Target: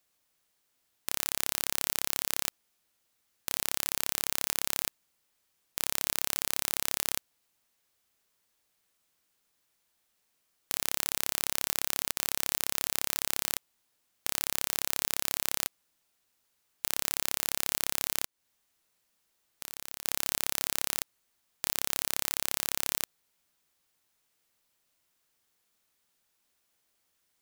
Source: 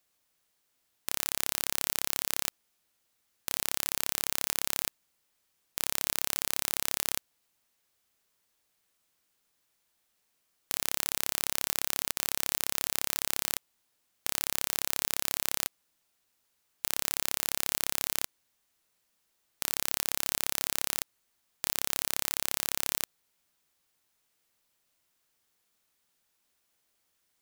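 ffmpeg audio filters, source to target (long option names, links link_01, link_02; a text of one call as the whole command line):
ffmpeg -i in.wav -filter_complex "[0:a]asplit=3[link_01][link_02][link_03];[link_01]afade=type=out:start_time=18.24:duration=0.02[link_04];[link_02]acompressor=threshold=-36dB:ratio=4,afade=type=in:start_time=18.24:duration=0.02,afade=type=out:start_time=20.04:duration=0.02[link_05];[link_03]afade=type=in:start_time=20.04:duration=0.02[link_06];[link_04][link_05][link_06]amix=inputs=3:normalize=0" out.wav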